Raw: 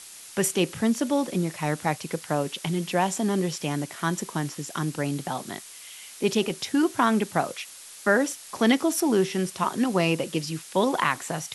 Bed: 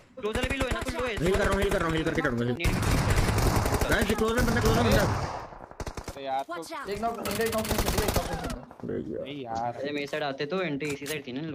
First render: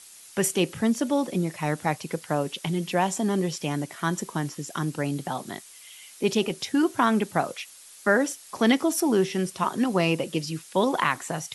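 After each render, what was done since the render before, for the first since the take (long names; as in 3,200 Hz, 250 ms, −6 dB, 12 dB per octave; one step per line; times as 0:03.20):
broadband denoise 6 dB, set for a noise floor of −45 dBFS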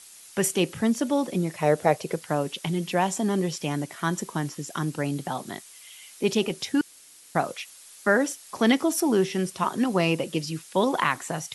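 0:01.61–0:02.14: flat-topped bell 510 Hz +10.5 dB 1.1 octaves
0:06.81–0:07.35: fill with room tone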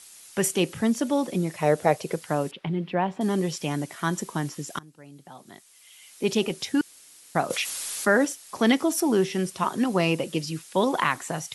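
0:02.51–0:03.21: high-frequency loss of the air 410 metres
0:04.79–0:06.35: fade in quadratic, from −22 dB
0:07.50–0:08.25: envelope flattener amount 50%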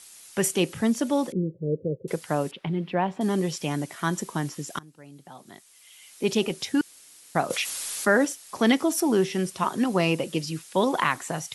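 0:01.32–0:02.08: Chebyshev low-pass with heavy ripple 530 Hz, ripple 3 dB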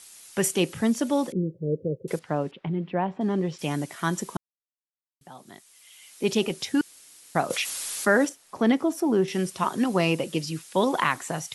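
0:02.19–0:03.59: head-to-tape spacing loss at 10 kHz 22 dB
0:04.37–0:05.21: silence
0:08.29–0:09.28: high-shelf EQ 2,000 Hz −11.5 dB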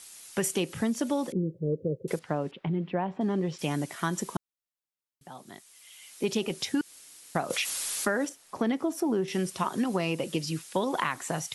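downward compressor 6 to 1, threshold −24 dBFS, peak gain reduction 9 dB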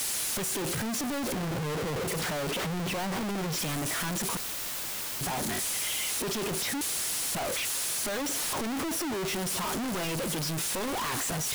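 sign of each sample alone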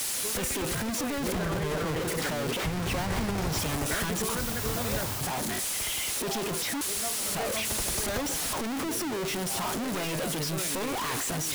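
mix in bed −9 dB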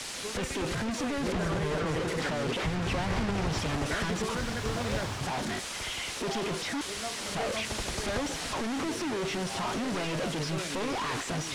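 high-frequency loss of the air 88 metres
delay with a high-pass on its return 476 ms, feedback 84%, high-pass 1,400 Hz, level −11 dB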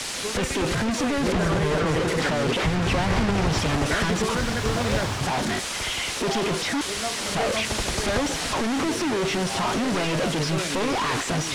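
level +7.5 dB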